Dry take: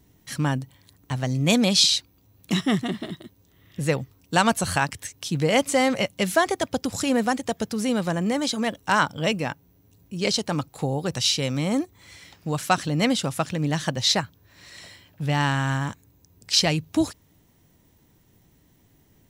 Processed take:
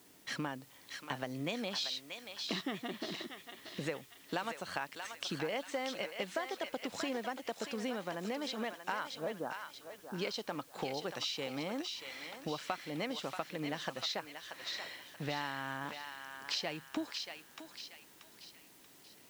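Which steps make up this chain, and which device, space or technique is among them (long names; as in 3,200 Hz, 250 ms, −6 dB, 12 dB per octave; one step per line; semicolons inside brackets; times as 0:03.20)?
0:09.13–0:10.18: elliptic low-pass filter 1,500 Hz
baby monitor (band-pass filter 320–3,800 Hz; downward compressor 6 to 1, threshold −37 dBFS, peak gain reduction 21 dB; white noise bed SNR 22 dB)
feedback echo with a high-pass in the loop 633 ms, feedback 47%, high-pass 1,200 Hz, level −4 dB
level +1 dB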